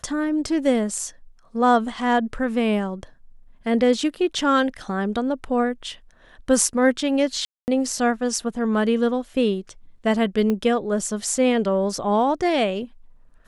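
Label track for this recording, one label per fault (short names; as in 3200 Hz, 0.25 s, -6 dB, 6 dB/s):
7.450000	7.680000	gap 0.229 s
10.500000	10.500000	pop -13 dBFS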